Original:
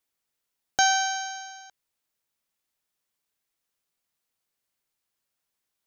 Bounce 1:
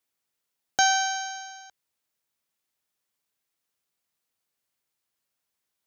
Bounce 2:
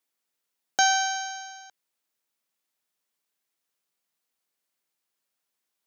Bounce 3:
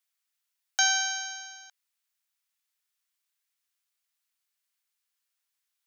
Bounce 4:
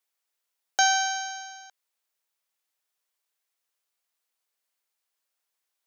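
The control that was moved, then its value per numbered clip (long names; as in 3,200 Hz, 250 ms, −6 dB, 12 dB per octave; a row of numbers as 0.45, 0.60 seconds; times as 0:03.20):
high-pass filter, corner frequency: 55, 170, 1,300, 470 Hertz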